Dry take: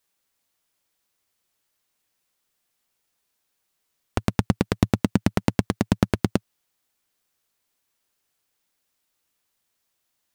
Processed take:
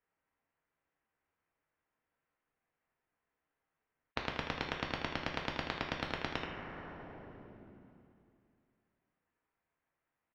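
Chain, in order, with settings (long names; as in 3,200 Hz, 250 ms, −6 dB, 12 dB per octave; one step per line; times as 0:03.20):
samples sorted by size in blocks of 8 samples
harmonic generator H 3 −21 dB, 4 −24 dB, 7 −19 dB, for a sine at −2 dBFS
in parallel at −7 dB: soft clipping −12 dBFS, distortion −12 dB
on the sum: low-pass filter 2,200 Hz 24 dB per octave
on a send: single-tap delay 79 ms −16.5 dB
on the sum: brickwall limiter −10.5 dBFS, peak gain reduction 8 dB
coupled-rooms reverb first 0.49 s, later 2.6 s, from −19 dB, DRR 2 dB
every bin compressed towards the loudest bin 4 to 1
level −5 dB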